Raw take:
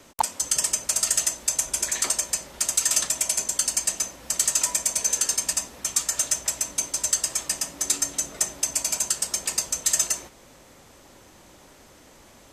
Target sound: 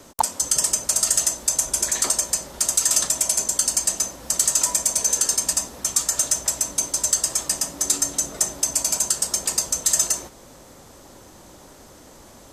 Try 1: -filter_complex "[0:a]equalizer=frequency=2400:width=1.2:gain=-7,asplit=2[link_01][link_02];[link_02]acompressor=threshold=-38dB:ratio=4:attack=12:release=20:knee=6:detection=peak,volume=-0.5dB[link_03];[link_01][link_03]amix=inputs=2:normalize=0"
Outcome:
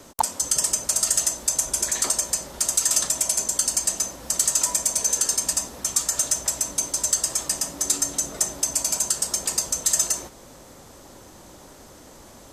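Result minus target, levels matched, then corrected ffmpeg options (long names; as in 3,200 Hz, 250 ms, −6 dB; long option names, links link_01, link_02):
downward compressor: peak gain reduction +7 dB
-filter_complex "[0:a]equalizer=frequency=2400:width=1.2:gain=-7,asplit=2[link_01][link_02];[link_02]acompressor=threshold=-29dB:ratio=4:attack=12:release=20:knee=6:detection=peak,volume=-0.5dB[link_03];[link_01][link_03]amix=inputs=2:normalize=0"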